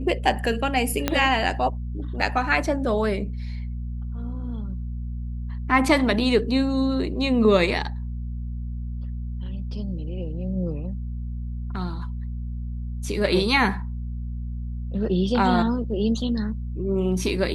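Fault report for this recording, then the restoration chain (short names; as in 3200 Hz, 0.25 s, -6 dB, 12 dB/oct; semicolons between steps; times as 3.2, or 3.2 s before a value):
hum 60 Hz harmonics 4 -30 dBFS
1.08 pop -6 dBFS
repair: de-click; de-hum 60 Hz, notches 4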